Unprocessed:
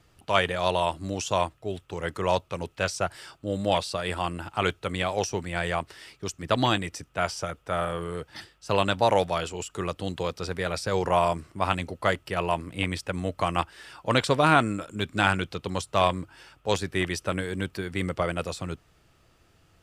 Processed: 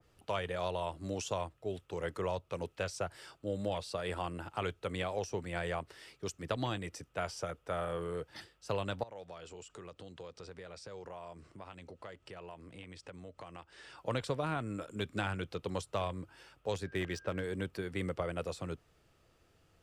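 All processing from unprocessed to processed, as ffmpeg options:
-filter_complex "[0:a]asettb=1/sr,asplit=3[s0][s1][s2];[s0]atrim=end=9.034[s3];[s1]atrim=start=9.03:end=13.98,asetpts=PTS-STARTPTS,afade=t=in:d=0.004:c=qsin,afade=t=out:st=4.946:d=0.004:c=qsin,lowpass=f=8700:w=0.5412,lowpass=f=8700:w=1.3066,acompressor=threshold=0.00891:ratio=4:attack=3.2:release=140:knee=1:detection=peak[s4];[s2]atrim=start=13.976[s5];[s3][s4]acrossfade=d=0.004:c1=hsin:c2=qsin[s6];[s6][s5]acrossfade=d=0.004:c1=qsin:c2=hsin,asettb=1/sr,asplit=3[s7][s8][s9];[s7]atrim=end=16.844[s10];[s8]atrim=start=16.84:end=17.44,asetpts=PTS-STARTPTS,afade=t=in:d=0.004:c=qsin,afade=t=out:st=0.596:d=0.004:c=qsin,aeval=exprs='val(0)+0.00447*sin(2*PI*1600*n/s)':c=same,adynamicsmooth=sensitivity=6.5:basefreq=3600[s11];[s9]atrim=start=17.436[s12];[s10][s11]acrossfade=d=0.004:c1=hsin:c2=qsin[s13];[s13][s12]acrossfade=d=0.004:c1=qsin:c2=hsin,equalizer=f=480:t=o:w=0.7:g=5,acrossover=split=140[s14][s15];[s15]acompressor=threshold=0.0631:ratio=10[s16];[s14][s16]amix=inputs=2:normalize=0,adynamicequalizer=threshold=0.00891:dfrequency=2300:dqfactor=0.7:tfrequency=2300:tqfactor=0.7:attack=5:release=100:ratio=0.375:range=1.5:mode=cutabove:tftype=highshelf,volume=0.422"

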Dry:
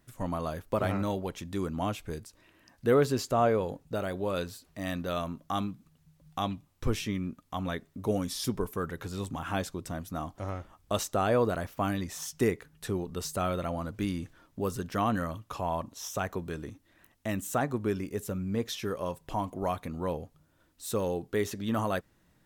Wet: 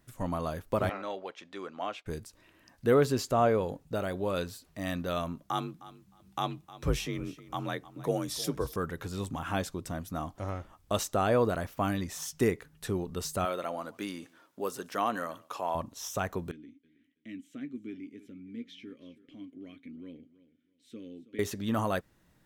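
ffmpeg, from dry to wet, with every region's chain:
-filter_complex "[0:a]asettb=1/sr,asplit=3[s0][s1][s2];[s0]atrim=end=0.894[s3];[s1]atrim=start=0.89:end=2.06,asetpts=PTS-STARTPTS,afade=t=in:d=0.004:c=qsin,afade=t=out:st=1.166:d=0.004:c=qsin,agate=range=0.0224:threshold=0.00708:ratio=3:release=100:detection=peak,highpass=530,lowpass=4000,equalizer=f=930:t=o:w=0.21:g=-4.5[s4];[s2]atrim=start=2.056[s5];[s3][s4]acrossfade=d=0.004:c1=hsin:c2=qsin[s6];[s6][s5]acrossfade=d=0.004:c1=qsin:c2=hsin,asettb=1/sr,asplit=3[s7][s8][s9];[s7]atrim=end=5.434[s10];[s8]atrim=start=5.43:end=8.76,asetpts=PTS-STARTPTS,afade=t=in:d=0.004:c=qsin,afade=t=out:st=3.326:d=0.004:c=qsin,equalizer=f=190:t=o:w=0.38:g=-10.5,afreqshift=39,aecho=1:1:309|618:0.133|0.024,atrim=end_sample=146853[s11];[s9]atrim=start=8.756[s12];[s10][s11]acrossfade=d=0.004:c1=hsin:c2=qsin[s13];[s13][s12]acrossfade=d=0.004:c1=qsin:c2=hsin,asettb=1/sr,asplit=3[s14][s15][s16];[s14]atrim=end=13.454[s17];[s15]atrim=start=13.45:end=15.75,asetpts=PTS-STARTPTS,afade=t=in:d=0.004:c=qsin,afade=t=out:st=2.296:d=0.004:c=qsin,highpass=350,aecho=1:1:143:0.0668,atrim=end_sample=101430[s18];[s16]atrim=start=15.746[s19];[s17][s18]acrossfade=d=0.004:c1=hsin:c2=qsin[s20];[s20][s19]acrossfade=d=0.004:c1=qsin:c2=hsin,asettb=1/sr,asplit=3[s21][s22][s23];[s21]atrim=end=16.514[s24];[s22]atrim=start=16.51:end=21.39,asetpts=PTS-STARTPTS,afade=t=in:d=0.004:c=qsin,afade=t=out:st=4.876:d=0.004:c=qsin,asplit=3[s25][s26][s27];[s25]bandpass=f=270:t=q:w=8,volume=1[s28];[s26]bandpass=f=2290:t=q:w=8,volume=0.501[s29];[s27]bandpass=f=3010:t=q:w=8,volume=0.355[s30];[s28][s29][s30]amix=inputs=3:normalize=0,asplit=2[s31][s32];[s32]adelay=13,volume=0.282[s33];[s31][s33]amix=inputs=2:normalize=0,atrim=end_sample=215208,aecho=1:1:324|648:0.133|0.0293,atrim=end_sample=215208[s34];[s23]atrim=start=21.386[s35];[s24][s34]acrossfade=d=0.004:c1=hsin:c2=qsin[s36];[s36][s35]acrossfade=d=0.004:c1=qsin:c2=hsin"

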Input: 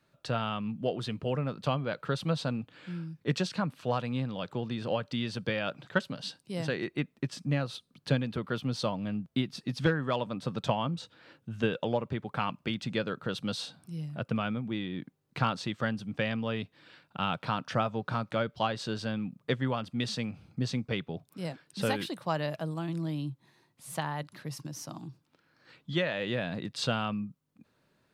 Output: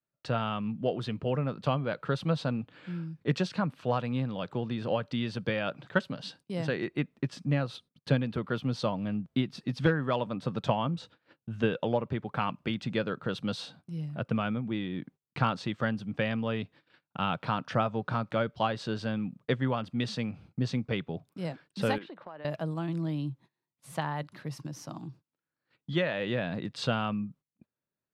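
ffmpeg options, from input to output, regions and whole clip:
-filter_complex "[0:a]asettb=1/sr,asplit=3[s0][s1][s2];[s0]atrim=end=21.984[s3];[s1]atrim=start=21.98:end=22.45,asetpts=PTS-STARTPTS,afade=t=in:d=0.004:c=qsin,afade=t=out:st=0.466:d=0.004:c=qsin,highpass=280,lowpass=2400,acompressor=threshold=0.00794:ratio=6:attack=3.2:release=140:knee=1:detection=peak[s4];[s2]atrim=start=22.446[s5];[s3][s4]acrossfade=d=0.004:c1=hsin:c2=qsin[s6];[s6][s5]acrossfade=d=0.004:c1=qsin:c2=hsin,agate=range=0.0631:threshold=0.00224:ratio=16:detection=peak,highshelf=f=4900:g=-10.5,volume=1.19"

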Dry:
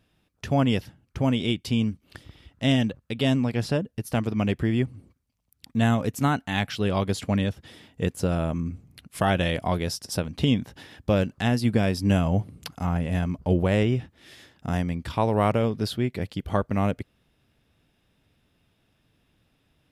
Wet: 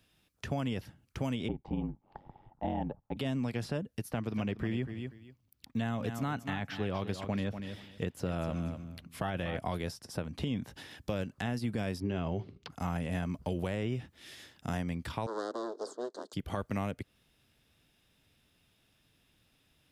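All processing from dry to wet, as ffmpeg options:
-filter_complex "[0:a]asettb=1/sr,asplit=3[s0][s1][s2];[s0]atrim=end=1.484[s3];[s1]atrim=start=1.48:end=3.17,asetpts=PTS-STARTPTS,afade=t=in:d=0.004:c=qsin,afade=t=out:st=1.686:d=0.004:c=qsin,aeval=exprs='val(0)*sin(2*PI*47*n/s)':c=same,lowpass=f=840:t=q:w=10[s4];[s2]atrim=start=3.166[s5];[s3][s4]acrossfade=d=0.004:c1=hsin:c2=qsin[s6];[s6][s5]acrossfade=d=0.004:c1=qsin:c2=hsin,asettb=1/sr,asplit=3[s7][s8][s9];[s7]atrim=end=4.104[s10];[s8]atrim=start=4.1:end=9.58,asetpts=PTS-STARTPTS,afade=t=in:d=0.004:c=qsin,afade=t=out:st=5.476:d=0.004:c=qsin,equalizer=f=9300:w=0.7:g=-10,aecho=1:1:241|482:0.251|0.0477,atrim=end_sample=241668[s11];[s9]atrim=start=9.576[s12];[s10][s11]acrossfade=d=0.004:c1=hsin:c2=qsin[s13];[s13][s12]acrossfade=d=0.004:c1=qsin:c2=hsin,asettb=1/sr,asplit=3[s14][s15][s16];[s14]atrim=end=12.004[s17];[s15]atrim=start=12:end=12.7,asetpts=PTS-STARTPTS,afade=t=in:d=0.004:c=qsin,afade=t=out:st=0.696:d=0.004:c=qsin,agate=range=0.224:threshold=0.00562:ratio=16:release=100:detection=peak,lowpass=f=4700:w=0.5412,lowpass=f=4700:w=1.3066,equalizer=f=390:t=o:w=0.24:g=13.5[s18];[s16]atrim=start=12.696[s19];[s17][s18]acrossfade=d=0.004:c1=hsin:c2=qsin[s20];[s20][s19]acrossfade=d=0.004:c1=qsin:c2=hsin,asettb=1/sr,asplit=3[s21][s22][s23];[s21]atrim=end=15.264[s24];[s22]atrim=start=15.26:end=16.33,asetpts=PTS-STARTPTS,afade=t=in:d=0.004:c=qsin,afade=t=out:st=1.066:d=0.004:c=qsin,aeval=exprs='abs(val(0))':c=same,asuperstop=centerf=2400:order=4:qfactor=0.58,highpass=f=320:w=0.5412,highpass=f=320:w=1.3066,equalizer=f=420:t=q:w=4:g=4,equalizer=f=800:t=q:w=4:g=-6,equalizer=f=1600:t=q:w=4:g=4,equalizer=f=3800:t=q:w=4:g=3,equalizer=f=5800:t=q:w=4:g=-7,lowpass=f=6600:w=0.5412,lowpass=f=6600:w=1.3066[s25];[s23]atrim=start=16.326[s26];[s24][s25]acrossfade=d=0.004:c1=hsin:c2=qsin[s27];[s27][s26]acrossfade=d=0.004:c1=qsin:c2=hsin,highshelf=f=2200:g=9.5,alimiter=limit=0.188:level=0:latency=1:release=34,acrossover=split=140|2000[s28][s29][s30];[s28]acompressor=threshold=0.0178:ratio=4[s31];[s29]acompressor=threshold=0.0447:ratio=4[s32];[s30]acompressor=threshold=0.00562:ratio=4[s33];[s31][s32][s33]amix=inputs=3:normalize=0,volume=0.562"

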